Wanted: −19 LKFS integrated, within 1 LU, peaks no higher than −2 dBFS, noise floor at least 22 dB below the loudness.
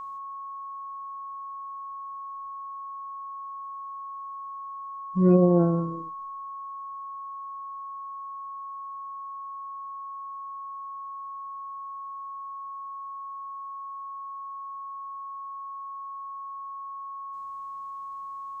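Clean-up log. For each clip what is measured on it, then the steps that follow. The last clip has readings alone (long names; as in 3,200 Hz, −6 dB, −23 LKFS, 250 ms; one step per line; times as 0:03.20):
interfering tone 1,100 Hz; level of the tone −35 dBFS; integrated loudness −33.0 LKFS; sample peak −9.5 dBFS; target loudness −19.0 LKFS
→ notch filter 1,100 Hz, Q 30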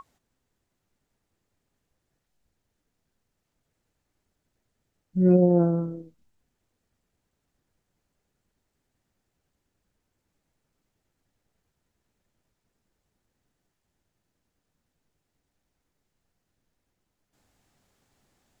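interfering tone none found; integrated loudness −21.5 LKFS; sample peak −10.0 dBFS; target loudness −19.0 LKFS
→ level +2.5 dB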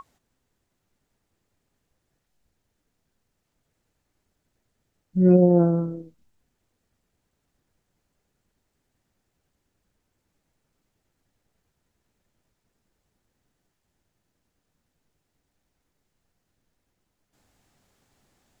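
integrated loudness −19.5 LKFS; sample peak −7.5 dBFS; background noise floor −78 dBFS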